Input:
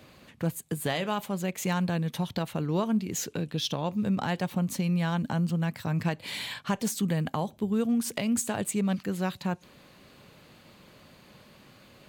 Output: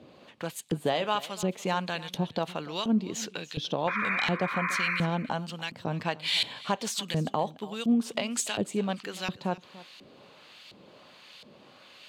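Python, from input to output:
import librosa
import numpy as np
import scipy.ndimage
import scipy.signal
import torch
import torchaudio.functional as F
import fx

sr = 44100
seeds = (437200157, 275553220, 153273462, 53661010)

p1 = fx.spec_paint(x, sr, seeds[0], shape='noise', start_s=3.87, length_s=1.2, low_hz=970.0, high_hz=2500.0, level_db=-33.0)
p2 = fx.high_shelf_res(p1, sr, hz=2500.0, db=6.5, q=1.5)
p3 = fx.filter_lfo_bandpass(p2, sr, shape='saw_up', hz=1.4, low_hz=310.0, high_hz=3200.0, q=0.8)
p4 = p3 + fx.echo_single(p3, sr, ms=291, db=-18.5, dry=0)
y = p4 * librosa.db_to_amplitude(5.0)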